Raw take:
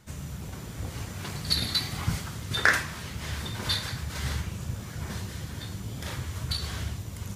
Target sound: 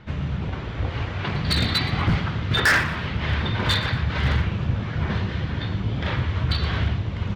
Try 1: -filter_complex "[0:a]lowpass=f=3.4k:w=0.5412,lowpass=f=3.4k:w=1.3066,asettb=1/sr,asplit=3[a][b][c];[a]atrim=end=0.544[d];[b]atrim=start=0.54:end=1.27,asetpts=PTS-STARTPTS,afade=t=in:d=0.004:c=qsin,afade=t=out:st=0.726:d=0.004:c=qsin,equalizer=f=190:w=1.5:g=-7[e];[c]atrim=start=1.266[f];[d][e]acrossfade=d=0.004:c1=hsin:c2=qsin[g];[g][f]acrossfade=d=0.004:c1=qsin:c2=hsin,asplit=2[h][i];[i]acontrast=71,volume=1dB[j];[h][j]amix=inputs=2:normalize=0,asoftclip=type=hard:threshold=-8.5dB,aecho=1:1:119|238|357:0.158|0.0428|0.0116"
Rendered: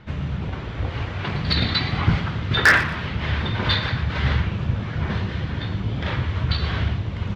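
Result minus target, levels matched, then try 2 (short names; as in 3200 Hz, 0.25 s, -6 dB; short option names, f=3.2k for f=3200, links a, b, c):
hard clip: distortion -5 dB
-filter_complex "[0:a]lowpass=f=3.4k:w=0.5412,lowpass=f=3.4k:w=1.3066,asettb=1/sr,asplit=3[a][b][c];[a]atrim=end=0.544[d];[b]atrim=start=0.54:end=1.27,asetpts=PTS-STARTPTS,afade=t=in:d=0.004:c=qsin,afade=t=out:st=0.726:d=0.004:c=qsin,equalizer=f=190:w=1.5:g=-7[e];[c]atrim=start=1.266[f];[d][e]acrossfade=d=0.004:c1=hsin:c2=qsin[g];[g][f]acrossfade=d=0.004:c1=qsin:c2=hsin,asplit=2[h][i];[i]acontrast=71,volume=1dB[j];[h][j]amix=inputs=2:normalize=0,asoftclip=type=hard:threshold=-14.5dB,aecho=1:1:119|238|357:0.158|0.0428|0.0116"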